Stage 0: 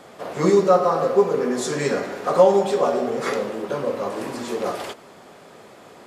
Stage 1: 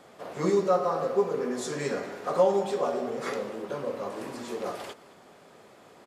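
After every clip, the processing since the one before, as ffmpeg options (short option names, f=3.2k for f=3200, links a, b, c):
-af "aecho=1:1:217:0.0891,volume=-8dB"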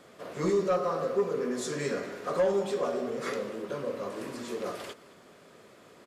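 -af "equalizer=f=810:w=3.4:g=-8.5,asoftclip=type=tanh:threshold=-18.5dB"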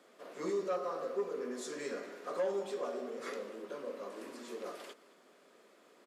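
-af "highpass=f=230:w=0.5412,highpass=f=230:w=1.3066,volume=-8dB"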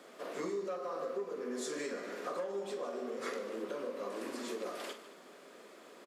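-filter_complex "[0:a]acompressor=threshold=-44dB:ratio=6,asplit=2[a][b];[b]aecho=0:1:45|150:0.299|0.168[c];[a][c]amix=inputs=2:normalize=0,volume=7.5dB"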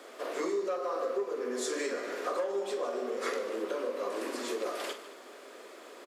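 -af "highpass=f=280:w=0.5412,highpass=f=280:w=1.3066,volume=6dB"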